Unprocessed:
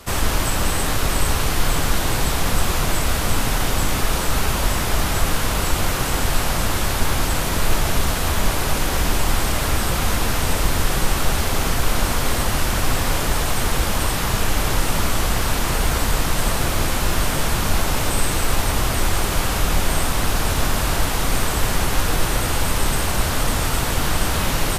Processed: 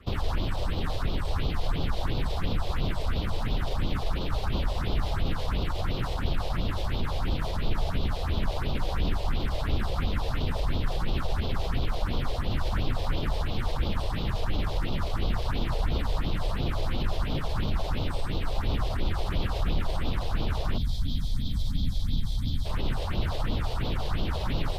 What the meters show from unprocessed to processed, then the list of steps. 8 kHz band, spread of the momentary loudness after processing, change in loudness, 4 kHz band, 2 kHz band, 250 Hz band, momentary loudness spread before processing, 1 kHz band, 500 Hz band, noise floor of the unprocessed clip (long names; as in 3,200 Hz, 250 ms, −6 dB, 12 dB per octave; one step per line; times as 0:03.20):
−28.0 dB, 1 LU, −10.0 dB, −12.0 dB, −15.0 dB, −8.0 dB, 0 LU, −12.0 dB, −9.5 dB, −22 dBFS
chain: gain on a spectral selection 0:20.78–0:22.66, 280–3,100 Hz −30 dB
high shelf with overshoot 3,000 Hz +6 dB, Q 1.5
brickwall limiter −14 dBFS, peak gain reduction 10 dB
harmonic generator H 7 −23 dB, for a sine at −14 dBFS
all-pass phaser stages 4, 2.9 Hz, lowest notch 220–1,800 Hz
high-frequency loss of the air 380 metres